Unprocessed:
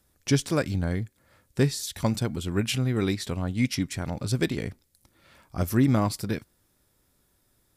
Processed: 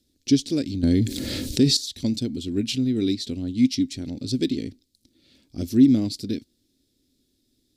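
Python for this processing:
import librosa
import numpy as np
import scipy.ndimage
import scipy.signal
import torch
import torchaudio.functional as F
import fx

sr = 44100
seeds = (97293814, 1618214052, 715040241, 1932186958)

y = fx.curve_eq(x, sr, hz=(180.0, 260.0, 1100.0, 4100.0, 11000.0), db=(0, 14, -20, 11, -4))
y = fx.env_flatten(y, sr, amount_pct=70, at=(0.83, 1.77))
y = F.gain(torch.from_numpy(y), -4.5).numpy()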